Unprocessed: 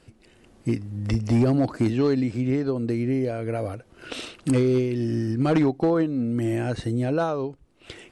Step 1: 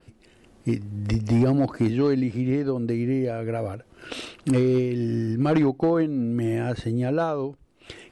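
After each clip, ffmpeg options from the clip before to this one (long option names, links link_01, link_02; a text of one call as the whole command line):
ffmpeg -i in.wav -af "adynamicequalizer=threshold=0.00178:dfrequency=7400:dqfactor=0.83:tfrequency=7400:tqfactor=0.83:attack=5:release=100:ratio=0.375:range=2.5:mode=cutabove:tftype=bell" out.wav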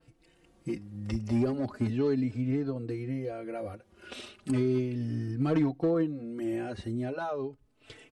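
ffmpeg -i in.wav -filter_complex "[0:a]asplit=2[link_01][link_02];[link_02]adelay=4,afreqshift=0.36[link_03];[link_01][link_03]amix=inputs=2:normalize=1,volume=-5dB" out.wav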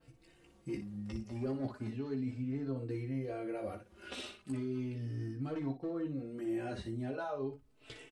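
ffmpeg -i in.wav -af "areverse,acompressor=threshold=-35dB:ratio=6,areverse,aecho=1:1:15|59:0.562|0.376,volume=-2dB" out.wav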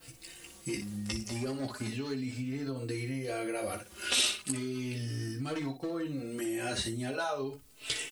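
ffmpeg -i in.wav -af "acompressor=threshold=-38dB:ratio=6,crystalizer=i=9.5:c=0,volume=5dB" out.wav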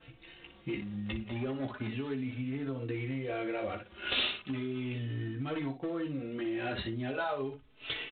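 ffmpeg -i in.wav -ar 8000 -c:a adpcm_ima_wav out.wav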